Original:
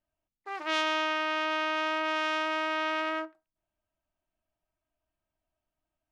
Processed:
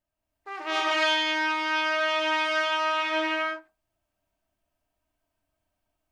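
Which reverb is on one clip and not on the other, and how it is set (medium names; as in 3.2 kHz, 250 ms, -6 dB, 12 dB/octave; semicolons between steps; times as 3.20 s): gated-style reverb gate 360 ms rising, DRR -5.5 dB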